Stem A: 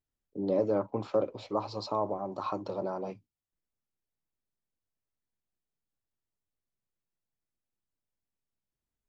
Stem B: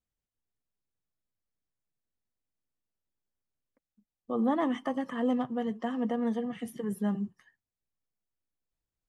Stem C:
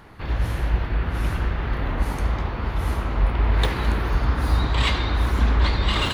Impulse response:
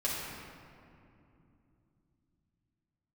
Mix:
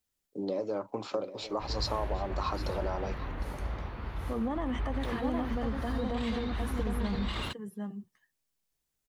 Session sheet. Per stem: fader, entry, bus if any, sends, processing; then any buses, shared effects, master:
+1.5 dB, 0.00 s, no bus, no send, echo send −14.5 dB, high-shelf EQ 2,500 Hz +10 dB; downward compressor 6 to 1, threshold −30 dBFS, peak gain reduction 8.5 dB; low-shelf EQ 120 Hz −11.5 dB
0.0 dB, 0.00 s, bus A, no send, echo send −8.5 dB, no processing
−12.5 dB, 1.40 s, bus A, no send, no echo send, no processing
bus A: 0.0 dB, brickwall limiter −24.5 dBFS, peak gain reduction 9.5 dB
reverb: not used
echo: single-tap delay 757 ms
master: no processing

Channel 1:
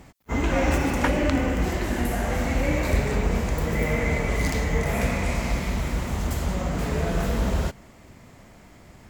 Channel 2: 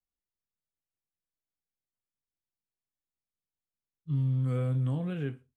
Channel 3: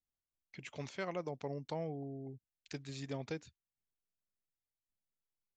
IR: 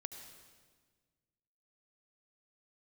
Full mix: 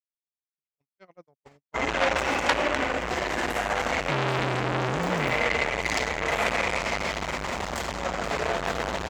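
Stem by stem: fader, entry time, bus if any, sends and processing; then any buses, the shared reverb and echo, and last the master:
0.0 dB, 1.45 s, send −5 dB, three-way crossover with the lows and the highs turned down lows −17 dB, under 430 Hz, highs −16 dB, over 6,900 Hz
+3.0 dB, 0.00 s, no send, no processing
−8.5 dB, 0.00 s, no send, no processing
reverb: on, RT60 1.5 s, pre-delay 67 ms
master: noise gate −44 dBFS, range −55 dB; automatic gain control gain up to 6.5 dB; saturating transformer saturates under 3,300 Hz

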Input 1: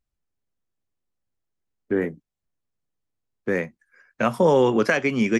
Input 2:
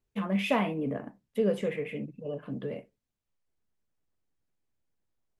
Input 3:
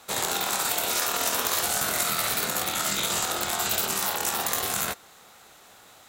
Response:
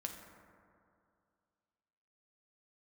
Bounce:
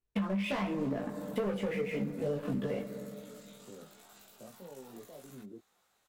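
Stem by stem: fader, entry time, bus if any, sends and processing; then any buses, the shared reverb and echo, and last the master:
−19.0 dB, 0.20 s, no send, inverse Chebyshev low-pass filter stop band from 1,600 Hz, stop band 40 dB; brickwall limiter −19.5 dBFS, peak gain reduction 11 dB
0.0 dB, 0.00 s, send −4.5 dB, bass and treble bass −1 dB, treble −6 dB; leveller curve on the samples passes 3
−19.0 dB, 0.50 s, no send, downward compressor 5 to 1, threshold −34 dBFS, peak gain reduction 11.5 dB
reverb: on, RT60 2.4 s, pre-delay 5 ms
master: multi-voice chorus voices 6, 1 Hz, delay 18 ms, depth 3 ms; downward compressor 12 to 1, threshold −30 dBFS, peak gain reduction 16 dB

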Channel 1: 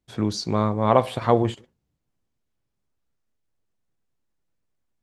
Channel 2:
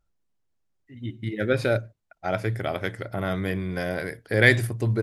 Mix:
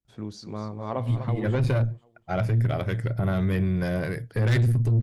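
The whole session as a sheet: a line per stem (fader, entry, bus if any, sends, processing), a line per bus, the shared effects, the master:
−14.5 dB, 0.00 s, no send, echo send −10.5 dB, no processing
0.0 dB, 0.05 s, no send, no echo send, parametric band 130 Hz +15 dB 0.58 octaves; tube saturation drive 16 dB, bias 0.5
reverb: not used
echo: repeating echo 246 ms, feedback 29%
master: low-shelf EQ 400 Hz +4.5 dB; brickwall limiter −16.5 dBFS, peak gain reduction 7.5 dB

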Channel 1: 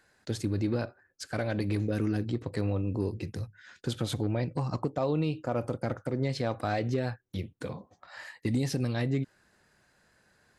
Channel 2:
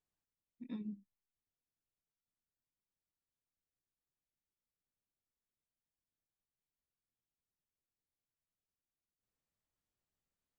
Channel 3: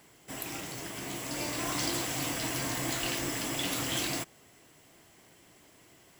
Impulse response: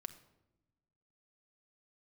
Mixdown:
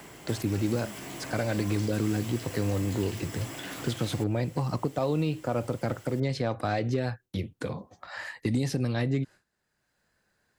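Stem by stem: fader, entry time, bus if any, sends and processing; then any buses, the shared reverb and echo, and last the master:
+1.5 dB, 0.00 s, no send, noise gate with hold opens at −53 dBFS
−3.5 dB, 0.00 s, no send, no processing
0.0 dB, 0.00 s, send −4 dB, downward compressor 12 to 1, threshold −42 dBFS, peak gain reduction 14.5 dB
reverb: on, RT60 1.0 s, pre-delay 5 ms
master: multiband upward and downward compressor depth 40%

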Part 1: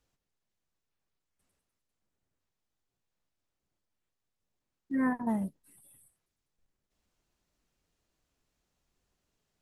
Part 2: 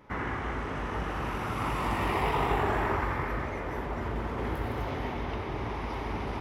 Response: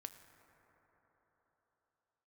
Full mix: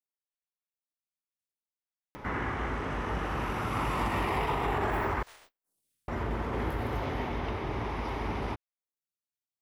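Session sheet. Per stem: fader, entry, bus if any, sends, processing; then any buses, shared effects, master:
−19.0 dB, 0.00 s, no send, compressing power law on the bin magnitudes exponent 0.16; phaser with staggered stages 0.62 Hz
+0.5 dB, 2.15 s, muted 0:05.23–0:06.08, no send, upward compression, threshold −35 dBFS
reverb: not used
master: brickwall limiter −20.5 dBFS, peak gain reduction 5.5 dB

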